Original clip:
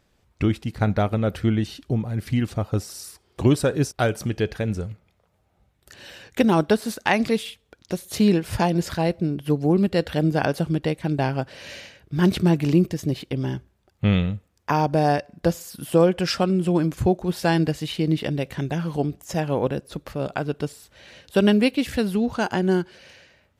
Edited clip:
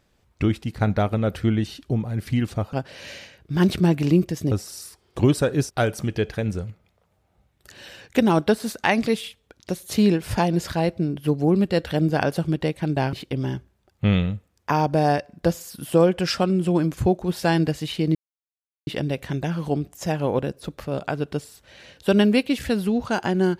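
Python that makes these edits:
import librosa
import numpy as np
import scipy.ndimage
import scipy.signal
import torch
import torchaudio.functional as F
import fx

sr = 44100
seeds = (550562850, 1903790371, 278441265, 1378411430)

y = fx.edit(x, sr, fx.move(start_s=11.35, length_s=1.78, to_s=2.73),
    fx.insert_silence(at_s=18.15, length_s=0.72), tone=tone)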